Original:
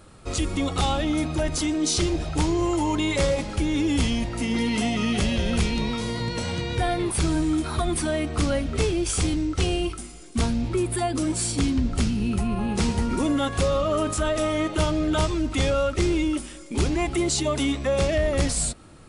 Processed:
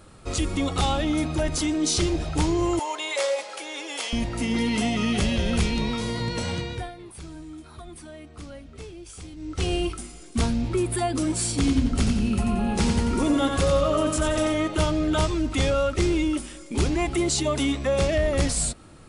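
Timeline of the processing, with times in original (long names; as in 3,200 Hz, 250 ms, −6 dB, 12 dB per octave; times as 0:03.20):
0:02.79–0:04.13: Chebyshev high-pass filter 550 Hz, order 3
0:06.53–0:09.75: duck −17 dB, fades 0.39 s
0:11.55–0:14.54: repeating echo 90 ms, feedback 42%, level −6 dB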